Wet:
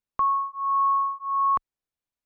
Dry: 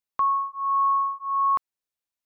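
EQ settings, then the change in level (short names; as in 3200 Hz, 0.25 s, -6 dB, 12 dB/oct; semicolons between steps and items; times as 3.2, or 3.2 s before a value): tilt -2 dB/oct; 0.0 dB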